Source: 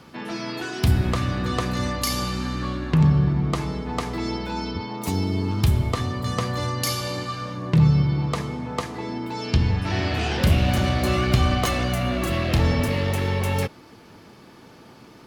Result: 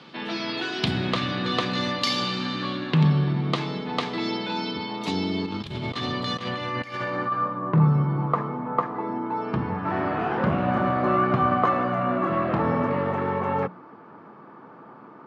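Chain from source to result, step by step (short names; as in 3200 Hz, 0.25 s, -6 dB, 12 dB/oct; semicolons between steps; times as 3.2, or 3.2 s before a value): HPF 140 Hz 24 dB/oct; notches 60/120/180/240 Hz; 5.46–7.48 negative-ratio compressor -30 dBFS, ratio -0.5; low-pass sweep 3700 Hz -> 1200 Hz, 6.35–7.4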